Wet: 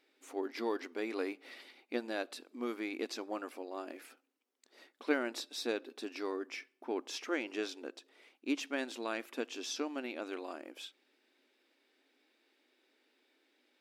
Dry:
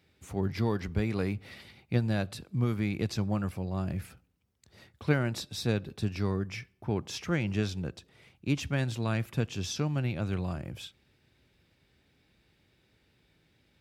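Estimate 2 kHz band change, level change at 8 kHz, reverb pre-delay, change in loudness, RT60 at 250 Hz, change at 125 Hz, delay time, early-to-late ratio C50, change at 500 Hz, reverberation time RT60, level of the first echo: -2.5 dB, -4.0 dB, no reverb, -7.0 dB, no reverb, under -40 dB, no echo, no reverb, -2.5 dB, no reverb, no echo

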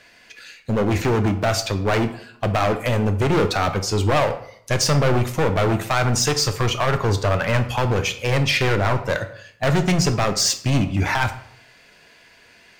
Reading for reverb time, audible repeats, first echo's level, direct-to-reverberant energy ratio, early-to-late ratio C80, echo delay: 0.65 s, no echo, no echo, 8.0 dB, 15.0 dB, no echo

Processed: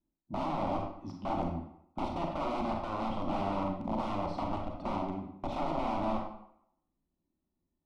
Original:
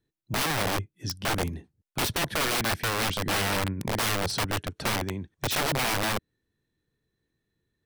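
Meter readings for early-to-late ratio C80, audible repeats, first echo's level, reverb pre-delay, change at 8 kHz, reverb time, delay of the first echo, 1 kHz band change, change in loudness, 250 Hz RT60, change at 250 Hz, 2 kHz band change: 7.5 dB, no echo, no echo, 30 ms, under -30 dB, 0.70 s, no echo, -2.5 dB, -7.5 dB, 0.65 s, -1.0 dB, -20.0 dB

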